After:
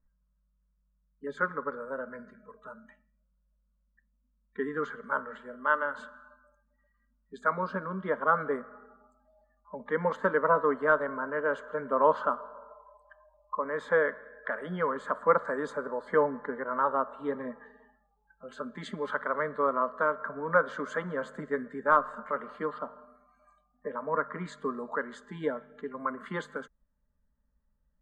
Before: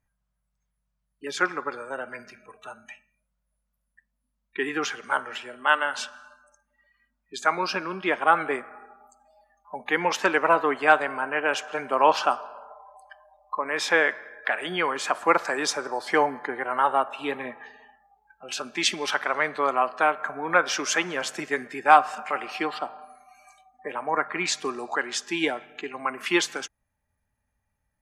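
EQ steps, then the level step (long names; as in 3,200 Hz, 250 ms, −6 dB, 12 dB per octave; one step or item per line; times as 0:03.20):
moving average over 8 samples
spectral tilt −2.5 dB per octave
phaser with its sweep stopped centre 510 Hz, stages 8
−2.0 dB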